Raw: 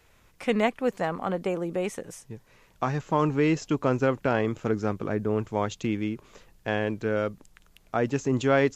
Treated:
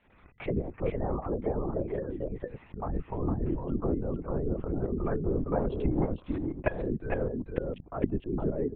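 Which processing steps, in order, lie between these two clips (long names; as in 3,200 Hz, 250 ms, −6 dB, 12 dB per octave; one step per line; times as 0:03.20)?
gate on every frequency bin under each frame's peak −20 dB strong
treble cut that deepens with the level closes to 500 Hz, closed at −22 dBFS
in parallel at −1.5 dB: compressor whose output falls as the input rises −32 dBFS, ratio −0.5
0:05.19–0:06.68: on the sum: transient designer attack +11 dB, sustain −2 dB
shaped tremolo saw up 3.3 Hz, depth 80%
on a send: single-tap delay 456 ms −3.5 dB
on the sum: linear-prediction vocoder at 8 kHz whisper
level −3 dB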